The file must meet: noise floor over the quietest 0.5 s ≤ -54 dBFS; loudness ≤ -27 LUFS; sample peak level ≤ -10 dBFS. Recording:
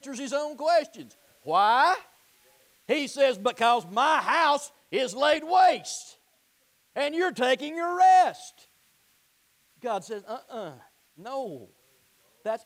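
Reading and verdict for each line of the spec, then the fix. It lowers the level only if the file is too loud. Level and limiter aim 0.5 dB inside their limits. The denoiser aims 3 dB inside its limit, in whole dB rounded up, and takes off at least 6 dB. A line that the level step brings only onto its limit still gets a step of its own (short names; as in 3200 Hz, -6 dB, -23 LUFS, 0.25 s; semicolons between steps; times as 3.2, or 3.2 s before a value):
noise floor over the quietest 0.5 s -67 dBFS: OK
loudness -24.5 LUFS: fail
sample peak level -12.0 dBFS: OK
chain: gain -3 dB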